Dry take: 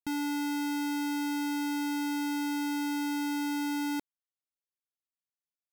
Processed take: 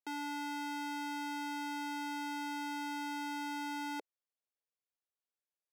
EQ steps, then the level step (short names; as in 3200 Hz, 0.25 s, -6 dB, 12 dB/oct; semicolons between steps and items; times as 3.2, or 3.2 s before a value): ladder high-pass 400 Hz, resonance 50%; high shelf 9100 Hz -12 dB; +5.5 dB